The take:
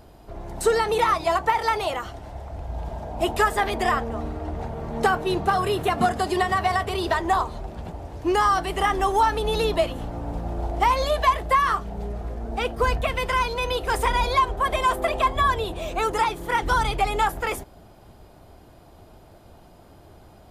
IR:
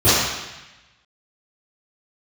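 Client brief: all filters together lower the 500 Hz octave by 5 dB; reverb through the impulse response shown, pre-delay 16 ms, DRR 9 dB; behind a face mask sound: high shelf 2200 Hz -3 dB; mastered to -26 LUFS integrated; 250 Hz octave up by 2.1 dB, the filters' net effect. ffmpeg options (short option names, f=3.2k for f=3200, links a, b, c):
-filter_complex "[0:a]equalizer=f=250:t=o:g=7,equalizer=f=500:t=o:g=-9,asplit=2[a][b];[1:a]atrim=start_sample=2205,adelay=16[c];[b][c]afir=irnorm=-1:irlink=0,volume=-34dB[d];[a][d]amix=inputs=2:normalize=0,highshelf=f=2.2k:g=-3,volume=-1dB"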